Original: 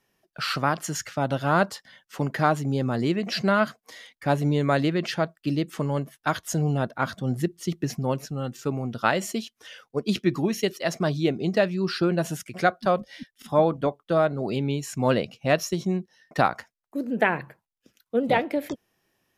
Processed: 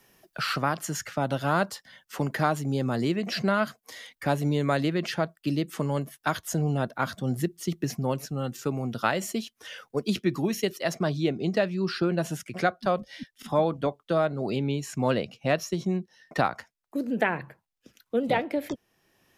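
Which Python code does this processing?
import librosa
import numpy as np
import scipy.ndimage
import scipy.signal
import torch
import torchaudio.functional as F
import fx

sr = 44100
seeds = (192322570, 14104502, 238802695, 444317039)

y = fx.high_shelf(x, sr, hz=8800.0, db=fx.steps((0.0, 7.0), (10.93, -3.0)))
y = fx.band_squash(y, sr, depth_pct=40)
y = F.gain(torch.from_numpy(y), -2.5).numpy()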